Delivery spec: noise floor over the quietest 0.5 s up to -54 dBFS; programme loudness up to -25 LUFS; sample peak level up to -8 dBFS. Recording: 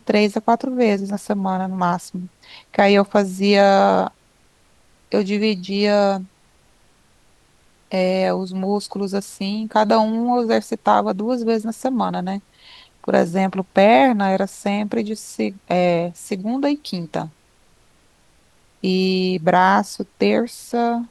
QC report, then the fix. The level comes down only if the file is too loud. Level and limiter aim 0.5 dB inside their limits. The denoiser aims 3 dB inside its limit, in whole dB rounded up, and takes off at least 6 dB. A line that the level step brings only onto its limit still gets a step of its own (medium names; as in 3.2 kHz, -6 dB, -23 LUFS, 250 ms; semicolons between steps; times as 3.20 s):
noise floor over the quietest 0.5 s -57 dBFS: pass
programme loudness -19.5 LUFS: fail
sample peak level -3.0 dBFS: fail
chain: trim -6 dB